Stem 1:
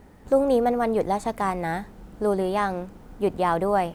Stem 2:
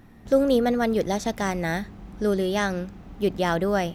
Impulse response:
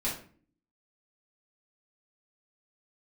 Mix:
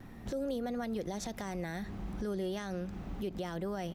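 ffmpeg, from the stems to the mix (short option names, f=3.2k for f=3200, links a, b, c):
-filter_complex "[0:a]alimiter=limit=-18.5dB:level=0:latency=1,volume=-19dB,asplit=2[a][b];[1:a]acrossover=split=430|3000[c][d][e];[d]acompressor=threshold=-26dB:ratio=6[f];[c][f][e]amix=inputs=3:normalize=0,adelay=3.8,volume=1dB[g];[b]apad=whole_len=174169[h];[g][h]sidechaincompress=threshold=-56dB:ratio=4:attack=34:release=171[i];[a][i]amix=inputs=2:normalize=0,alimiter=level_in=4dB:limit=-24dB:level=0:latency=1:release=113,volume=-4dB"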